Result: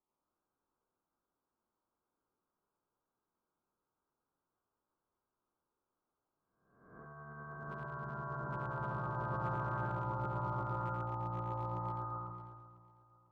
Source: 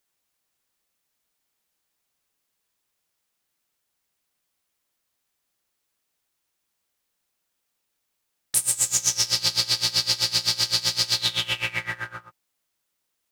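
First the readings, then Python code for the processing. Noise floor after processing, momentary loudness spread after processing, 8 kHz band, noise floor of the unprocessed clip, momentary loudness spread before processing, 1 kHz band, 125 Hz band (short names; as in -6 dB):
under -85 dBFS, 13 LU, under -40 dB, -78 dBFS, 7 LU, +3.0 dB, +1.5 dB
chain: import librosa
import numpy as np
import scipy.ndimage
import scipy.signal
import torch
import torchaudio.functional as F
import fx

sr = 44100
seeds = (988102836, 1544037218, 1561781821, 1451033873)

y = fx.spec_swells(x, sr, rise_s=1.09)
y = scipy.signal.sosfilt(scipy.signal.cheby1(6, 6, 1300.0, 'lowpass', fs=sr, output='sos'), y)
y = np.clip(10.0 ** (29.5 / 20.0) * y, -1.0, 1.0) / 10.0 ** (29.5 / 20.0)
y = y + 10.0 ** (-4.0 / 20.0) * np.pad(y, (int(87 * sr / 1000.0), 0))[:len(y)]
y = fx.echo_pitch(y, sr, ms=106, semitones=2, count=2, db_per_echo=-3.0)
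y = fx.echo_feedback(y, sr, ms=498, feedback_pct=38, wet_db=-17.5)
y = fx.sustainer(y, sr, db_per_s=31.0)
y = y * 10.0 ** (-4.0 / 20.0)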